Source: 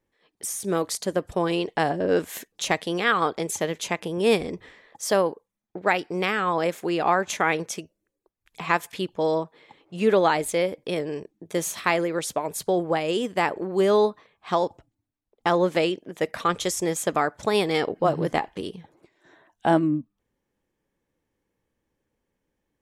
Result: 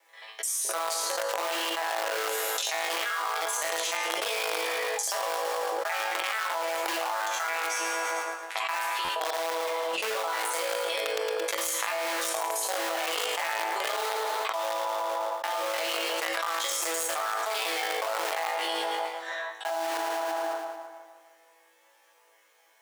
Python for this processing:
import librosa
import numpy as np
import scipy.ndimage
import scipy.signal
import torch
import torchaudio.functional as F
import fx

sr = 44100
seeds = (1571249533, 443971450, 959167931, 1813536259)

p1 = fx.local_reverse(x, sr, ms=43.0)
p2 = fx.resonator_bank(p1, sr, root=45, chord='fifth', decay_s=0.61)
p3 = fx.echo_filtered(p2, sr, ms=75, feedback_pct=71, hz=3500.0, wet_db=-19)
p4 = fx.quant_dither(p3, sr, seeds[0], bits=6, dither='none')
p5 = p3 + (p4 * librosa.db_to_amplitude(-3.5))
p6 = scipy.signal.sosfilt(scipy.signal.butter(4, 660.0, 'highpass', fs=sr, output='sos'), p5)
p7 = fx.echo_split(p6, sr, split_hz=1400.0, low_ms=154, high_ms=112, feedback_pct=52, wet_db=-14)
p8 = fx.buffer_glitch(p7, sr, at_s=(9.04,), block=512, repeats=3)
p9 = fx.env_flatten(p8, sr, amount_pct=100)
y = p9 * librosa.db_to_amplitude(-1.5)